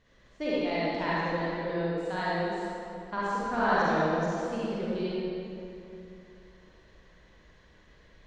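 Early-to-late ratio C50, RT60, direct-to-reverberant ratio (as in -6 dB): -8.0 dB, 2.8 s, -9.5 dB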